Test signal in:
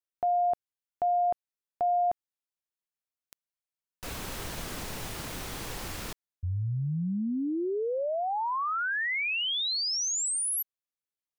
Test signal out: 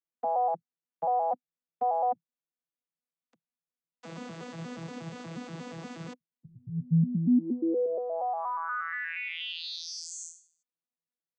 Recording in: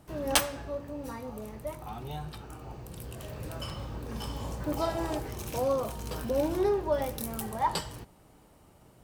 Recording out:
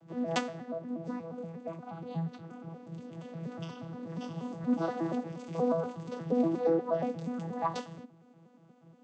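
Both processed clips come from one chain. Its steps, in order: vocoder on a broken chord bare fifth, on E3, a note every 119 ms

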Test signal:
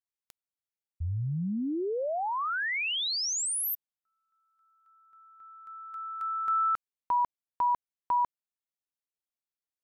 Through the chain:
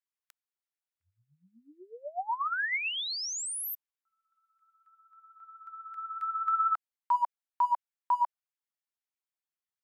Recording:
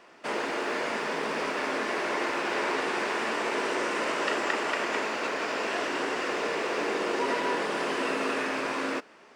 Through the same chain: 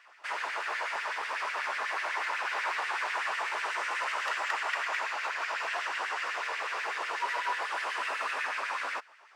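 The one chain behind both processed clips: overload inside the chain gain 22.5 dB; LFO high-pass sine 8.1 Hz 790–2000 Hz; trim -5 dB

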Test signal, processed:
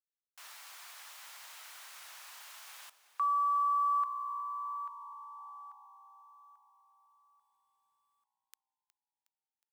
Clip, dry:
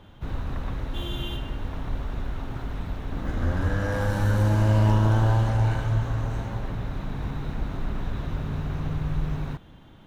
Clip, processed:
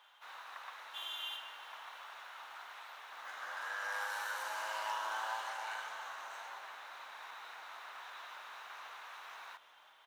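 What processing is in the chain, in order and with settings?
high-pass 900 Hz 24 dB/octave; companded quantiser 8-bit; frequency-shifting echo 364 ms, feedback 59%, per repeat -60 Hz, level -17 dB; trim -4 dB

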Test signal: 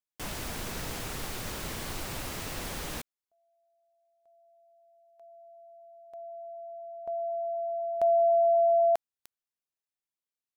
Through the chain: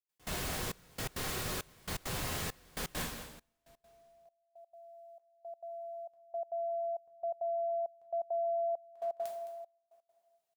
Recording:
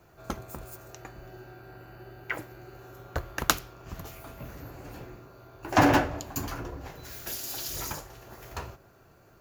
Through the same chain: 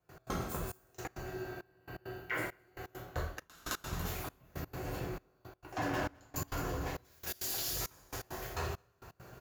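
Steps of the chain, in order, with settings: delay 214 ms -14.5 dB; two-slope reverb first 0.49 s, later 2 s, from -16 dB, DRR -1.5 dB; reverse; compression 8:1, threshold -34 dBFS; reverse; trance gate ".x.xxxxx.." 168 bpm -24 dB; trim +1 dB

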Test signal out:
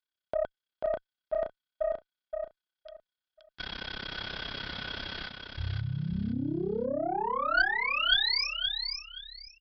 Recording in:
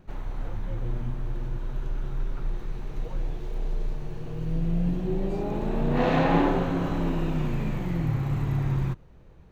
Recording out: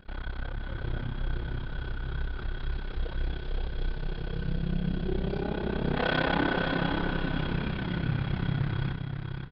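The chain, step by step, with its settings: treble shelf 2.4 kHz +9 dB; in parallel at -1.5 dB: gain riding within 3 dB; on the sum: small resonant body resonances 1.5/3.3 kHz, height 17 dB, ringing for 50 ms; AM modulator 33 Hz, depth 95%; valve stage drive 14 dB, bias 0.25; on a send: feedback delay 523 ms, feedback 23%, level -5.5 dB; on the sum: resampled via 11.025 kHz; trim -4 dB

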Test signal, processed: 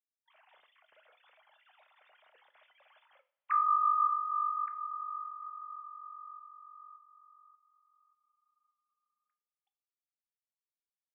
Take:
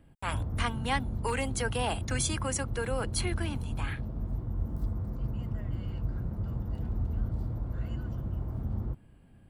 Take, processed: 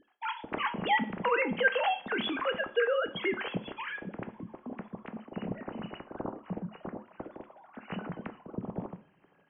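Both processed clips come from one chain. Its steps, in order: formants replaced by sine waves; two-slope reverb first 0.37 s, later 3.7 s, from -28 dB, DRR 8 dB; trim -3 dB

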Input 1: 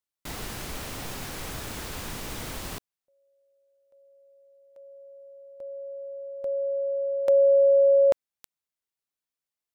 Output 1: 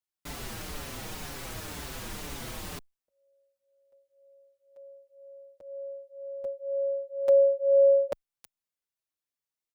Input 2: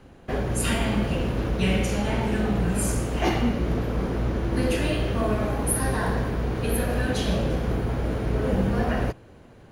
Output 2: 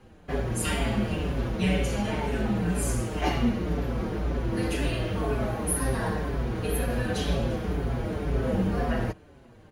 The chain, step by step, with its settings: endless flanger 5.7 ms -2 Hz

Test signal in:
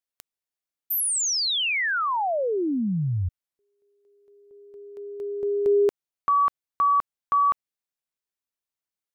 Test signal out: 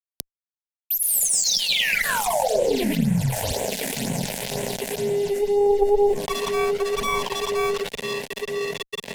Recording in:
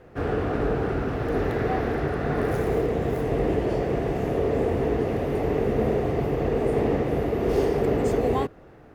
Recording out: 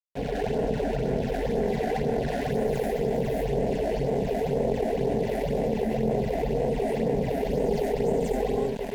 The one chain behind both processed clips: on a send: echo that smears into a reverb 1060 ms, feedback 59%, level -15.5 dB; on the sum: gated-style reverb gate 260 ms rising, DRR -5 dB; flange 1 Hz, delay 7 ms, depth 9.8 ms, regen -84%; dynamic bell 400 Hz, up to +3 dB, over -34 dBFS, Q 7.2; phase shifter stages 8, 2 Hz, lowest notch 130–4900 Hz; crossover distortion -39.5 dBFS; Chebyshev shaper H 2 -11 dB, 3 -18 dB, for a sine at -4.5 dBFS; static phaser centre 330 Hz, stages 6; level flattener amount 70%; trim -1 dB

